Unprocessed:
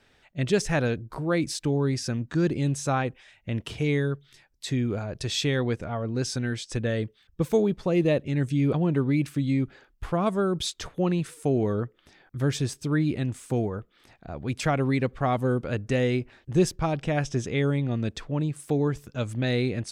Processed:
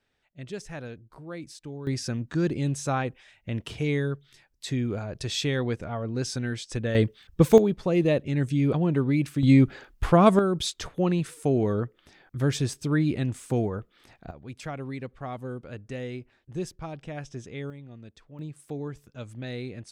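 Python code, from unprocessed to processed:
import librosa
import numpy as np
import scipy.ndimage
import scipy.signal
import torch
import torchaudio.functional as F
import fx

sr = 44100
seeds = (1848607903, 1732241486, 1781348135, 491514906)

y = fx.gain(x, sr, db=fx.steps((0.0, -13.5), (1.87, -1.5), (6.95, 7.5), (7.58, 0.0), (9.43, 8.0), (10.39, 0.5), (14.31, -11.0), (17.7, -18.0), (18.39, -10.0)))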